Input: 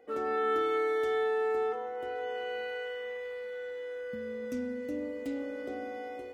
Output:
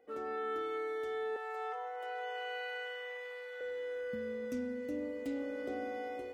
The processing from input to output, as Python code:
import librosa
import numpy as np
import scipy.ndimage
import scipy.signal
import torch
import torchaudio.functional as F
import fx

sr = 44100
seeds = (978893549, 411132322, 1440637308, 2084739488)

y = fx.highpass(x, sr, hz=590.0, slope=24, at=(1.36, 3.61))
y = fx.rider(y, sr, range_db=4, speed_s=0.5)
y = y * librosa.db_to_amplitude(-4.5)